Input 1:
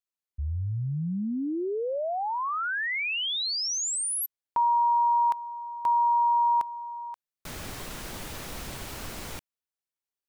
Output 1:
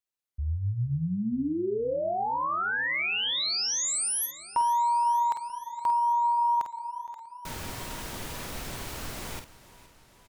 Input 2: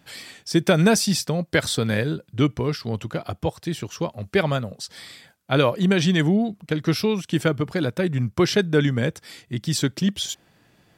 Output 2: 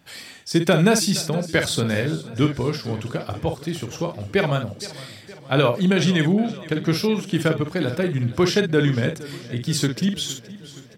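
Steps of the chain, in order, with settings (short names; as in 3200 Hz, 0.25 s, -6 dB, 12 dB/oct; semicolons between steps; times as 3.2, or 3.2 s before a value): tapped delay 42/50 ms -16.5/-8 dB; warbling echo 0.468 s, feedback 62%, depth 60 cents, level -18 dB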